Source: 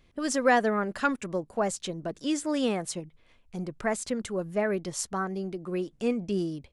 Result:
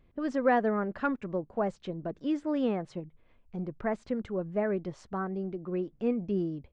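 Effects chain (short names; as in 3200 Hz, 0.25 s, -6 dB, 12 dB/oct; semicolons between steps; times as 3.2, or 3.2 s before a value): tape spacing loss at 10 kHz 38 dB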